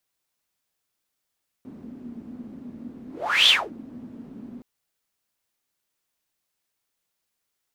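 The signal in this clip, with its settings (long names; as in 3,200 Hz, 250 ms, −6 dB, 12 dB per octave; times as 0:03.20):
pass-by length 2.97 s, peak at 0:01.83, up 0.42 s, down 0.26 s, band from 240 Hz, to 3,400 Hz, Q 9.1, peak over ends 24 dB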